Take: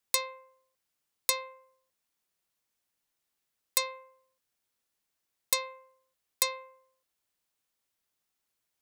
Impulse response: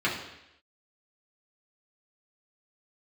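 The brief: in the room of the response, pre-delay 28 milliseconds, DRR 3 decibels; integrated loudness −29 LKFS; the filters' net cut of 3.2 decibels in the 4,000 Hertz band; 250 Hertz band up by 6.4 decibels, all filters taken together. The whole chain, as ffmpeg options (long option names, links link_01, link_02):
-filter_complex "[0:a]equalizer=frequency=250:width_type=o:gain=8.5,equalizer=frequency=4000:width_type=o:gain=-3.5,asplit=2[link_01][link_02];[1:a]atrim=start_sample=2205,adelay=28[link_03];[link_02][link_03]afir=irnorm=-1:irlink=0,volume=-15.5dB[link_04];[link_01][link_04]amix=inputs=2:normalize=0,volume=3.5dB"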